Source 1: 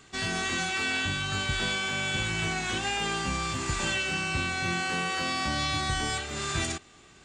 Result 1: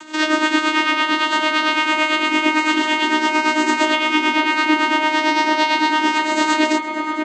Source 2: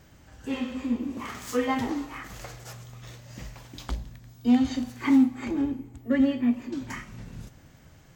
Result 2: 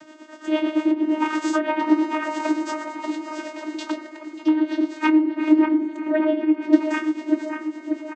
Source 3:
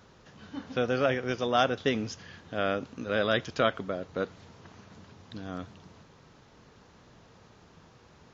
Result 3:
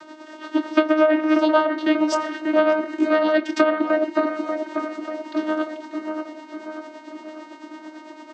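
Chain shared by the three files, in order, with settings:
treble ducked by the level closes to 2800 Hz, closed at -21 dBFS; low shelf 240 Hz -11 dB; compressor 4:1, threshold -34 dBFS; vocoder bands 16, saw 310 Hz; tremolo 8.9 Hz, depth 60%; doubler 24 ms -13 dB; dark delay 0.588 s, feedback 58%, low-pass 2000 Hz, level -5 dB; normalise peaks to -3 dBFS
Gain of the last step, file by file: +22.5, +22.5, +23.5 dB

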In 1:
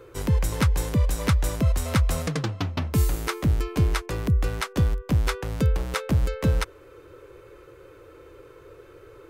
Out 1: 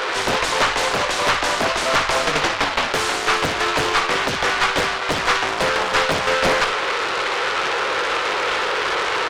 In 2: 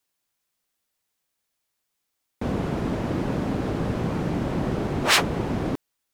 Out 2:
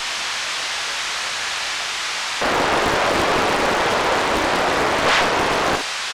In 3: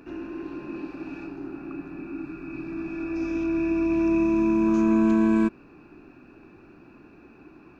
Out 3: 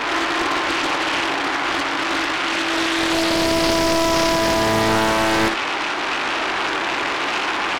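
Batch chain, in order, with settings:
delta modulation 64 kbps, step -32 dBFS; HPF 830 Hz 12 dB/oct; in parallel at -0.5 dB: vocal rider within 4 dB 2 s; on the sum: sample leveller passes 3; one-sided clip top -21.5 dBFS, bottom -14 dBFS; air absorption 130 m; on a send: early reflections 21 ms -8.5 dB, 60 ms -7.5 dB; on the sum: Doppler distortion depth 0.92 ms; match loudness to -19 LUFS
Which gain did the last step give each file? +5.0, +3.0, +6.0 dB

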